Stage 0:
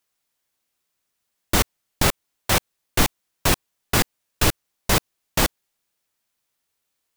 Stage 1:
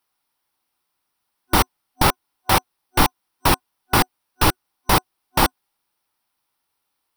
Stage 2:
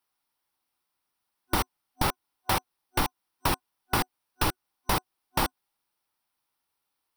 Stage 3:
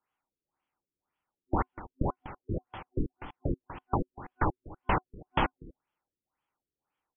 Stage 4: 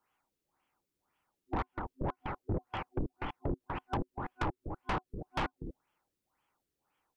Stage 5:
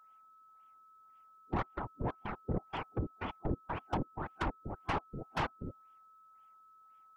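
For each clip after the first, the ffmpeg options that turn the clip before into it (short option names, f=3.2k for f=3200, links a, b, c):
-af "superequalizer=6b=1.41:9b=2.51:10b=1.78:15b=0.316,volume=1dB"
-af "acompressor=threshold=-16dB:ratio=6,volume=-5.5dB"
-af "aecho=1:1:244:0.141,afftfilt=real='re*lt(b*sr/1024,460*pow(3500/460,0.5+0.5*sin(2*PI*1.9*pts/sr)))':imag='im*lt(b*sr/1024,460*pow(3500/460,0.5+0.5*sin(2*PI*1.9*pts/sr)))':win_size=1024:overlap=0.75"
-af "acompressor=threshold=-31dB:ratio=5,asoftclip=type=tanh:threshold=-34dB,volume=6.5dB"
-af "afftfilt=real='hypot(re,im)*cos(2*PI*random(0))':imag='hypot(re,im)*sin(2*PI*random(1))':win_size=512:overlap=0.75,aeval=exprs='val(0)+0.000631*sin(2*PI*1300*n/s)':c=same,volume=5.5dB"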